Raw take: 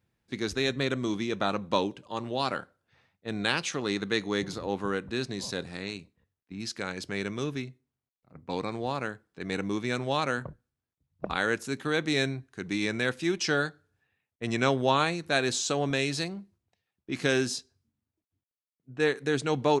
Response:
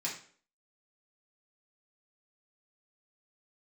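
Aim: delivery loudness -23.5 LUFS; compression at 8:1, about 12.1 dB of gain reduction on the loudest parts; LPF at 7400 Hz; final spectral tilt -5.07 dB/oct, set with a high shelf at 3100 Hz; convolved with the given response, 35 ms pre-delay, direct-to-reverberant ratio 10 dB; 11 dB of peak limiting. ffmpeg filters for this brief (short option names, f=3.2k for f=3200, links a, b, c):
-filter_complex "[0:a]lowpass=7.4k,highshelf=f=3.1k:g=-8,acompressor=threshold=-33dB:ratio=8,alimiter=level_in=6.5dB:limit=-24dB:level=0:latency=1,volume=-6.5dB,asplit=2[a][b];[1:a]atrim=start_sample=2205,adelay=35[c];[b][c]afir=irnorm=-1:irlink=0,volume=-13dB[d];[a][d]amix=inputs=2:normalize=0,volume=18.5dB"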